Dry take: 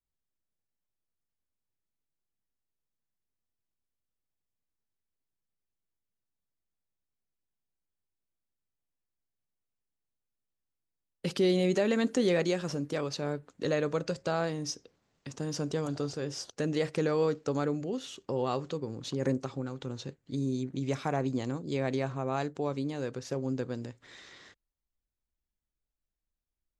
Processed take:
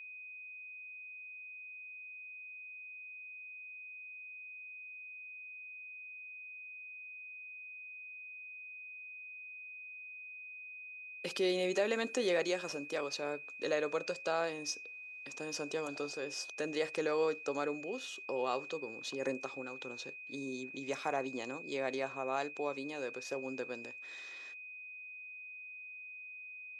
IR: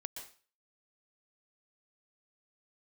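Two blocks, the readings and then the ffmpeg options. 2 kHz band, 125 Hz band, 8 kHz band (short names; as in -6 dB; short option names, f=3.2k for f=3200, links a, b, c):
+3.5 dB, -20.0 dB, -2.0 dB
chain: -af "aeval=exprs='val(0)+0.00631*sin(2*PI*2500*n/s)':c=same,highpass=420,volume=-2dB"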